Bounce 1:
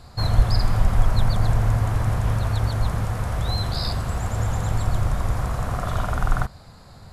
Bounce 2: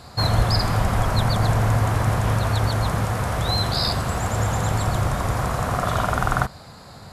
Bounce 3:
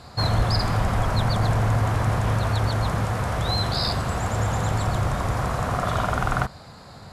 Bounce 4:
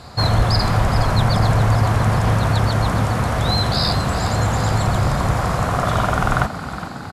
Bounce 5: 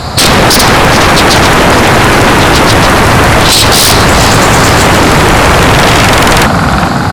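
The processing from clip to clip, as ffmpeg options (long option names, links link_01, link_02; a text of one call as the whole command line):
ffmpeg -i in.wav -af "highpass=frequency=160:poles=1,volume=6.5dB" out.wav
ffmpeg -i in.wav -af "highshelf=frequency=11000:gain=-10.5,asoftclip=type=tanh:threshold=-9.5dB,volume=-1dB" out.wav
ffmpeg -i in.wav -filter_complex "[0:a]asplit=8[link_01][link_02][link_03][link_04][link_05][link_06][link_07][link_08];[link_02]adelay=414,afreqshift=33,volume=-12dB[link_09];[link_03]adelay=828,afreqshift=66,volume=-16dB[link_10];[link_04]adelay=1242,afreqshift=99,volume=-20dB[link_11];[link_05]adelay=1656,afreqshift=132,volume=-24dB[link_12];[link_06]adelay=2070,afreqshift=165,volume=-28.1dB[link_13];[link_07]adelay=2484,afreqshift=198,volume=-32.1dB[link_14];[link_08]adelay=2898,afreqshift=231,volume=-36.1dB[link_15];[link_01][link_09][link_10][link_11][link_12][link_13][link_14][link_15]amix=inputs=8:normalize=0,volume=5dB" out.wav
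ffmpeg -i in.wav -af "aeval=exprs='0.531*sin(PI/2*5.62*val(0)/0.531)':channel_layout=same,volume=4dB" out.wav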